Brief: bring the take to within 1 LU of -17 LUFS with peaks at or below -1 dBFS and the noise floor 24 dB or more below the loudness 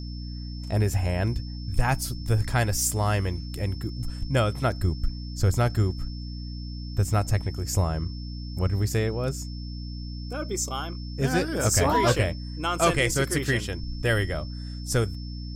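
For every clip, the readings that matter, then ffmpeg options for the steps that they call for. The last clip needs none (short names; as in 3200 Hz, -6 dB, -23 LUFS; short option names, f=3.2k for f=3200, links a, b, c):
hum 60 Hz; harmonics up to 300 Hz; hum level -32 dBFS; steady tone 5300 Hz; tone level -45 dBFS; loudness -27.0 LUFS; peak -7.5 dBFS; loudness target -17.0 LUFS
-> -af "bandreject=f=60:t=h:w=4,bandreject=f=120:t=h:w=4,bandreject=f=180:t=h:w=4,bandreject=f=240:t=h:w=4,bandreject=f=300:t=h:w=4"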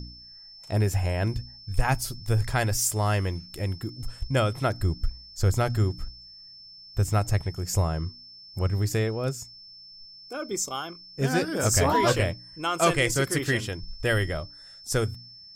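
hum none; steady tone 5300 Hz; tone level -45 dBFS
-> -af "bandreject=f=5.3k:w=30"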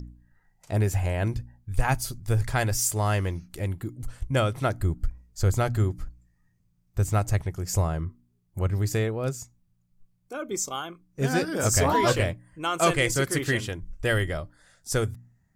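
steady tone none; loudness -27.0 LUFS; peak -8.5 dBFS; loudness target -17.0 LUFS
-> -af "volume=10dB,alimiter=limit=-1dB:level=0:latency=1"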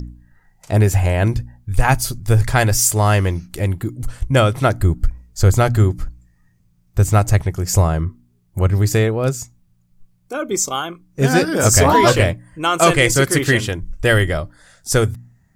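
loudness -17.0 LUFS; peak -1.0 dBFS; noise floor -59 dBFS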